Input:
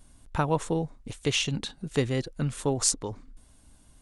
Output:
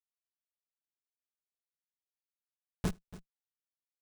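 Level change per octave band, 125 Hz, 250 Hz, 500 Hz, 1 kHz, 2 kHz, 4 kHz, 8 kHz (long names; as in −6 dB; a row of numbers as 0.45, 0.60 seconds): −16.0, −14.5, −22.5, −22.0, −20.0, −26.0, −28.0 decibels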